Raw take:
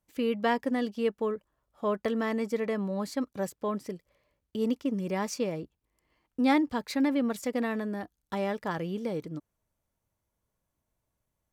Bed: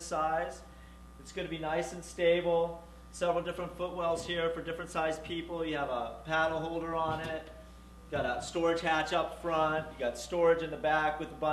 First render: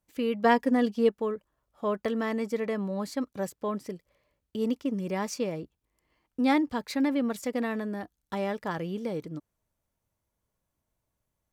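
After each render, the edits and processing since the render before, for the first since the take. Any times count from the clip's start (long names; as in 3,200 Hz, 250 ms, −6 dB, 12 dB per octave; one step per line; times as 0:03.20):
0:00.44–0:01.09: comb filter 4.2 ms, depth 85%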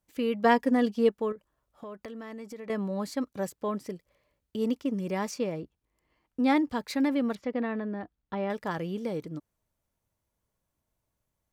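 0:01.32–0:02.70: downward compressor 4 to 1, threshold −40 dBFS
0:05.31–0:06.56: high-shelf EQ 4,600 Hz −5.5 dB
0:07.35–0:08.50: high-frequency loss of the air 290 metres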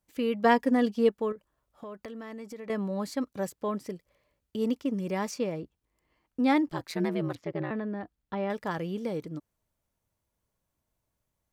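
0:06.68–0:07.71: ring modulation 84 Hz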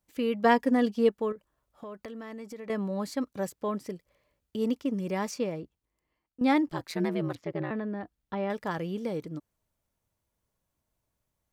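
0:05.42–0:06.41: fade out, to −15 dB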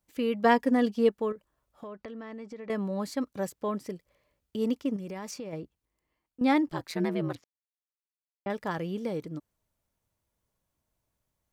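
0:01.87–0:02.70: high-frequency loss of the air 110 metres
0:04.96–0:05.53: downward compressor, threshold −35 dBFS
0:07.44–0:08.46: silence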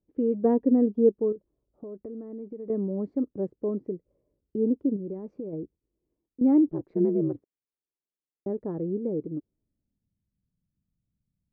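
low-pass filter sweep 380 Hz → 190 Hz, 0:09.35–0:10.27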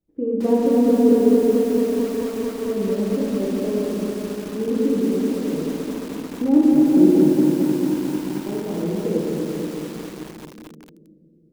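rectangular room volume 130 cubic metres, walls hard, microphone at 0.63 metres
feedback echo at a low word length 220 ms, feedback 80%, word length 6 bits, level −5 dB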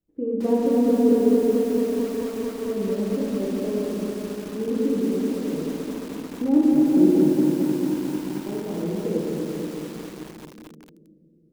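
level −3 dB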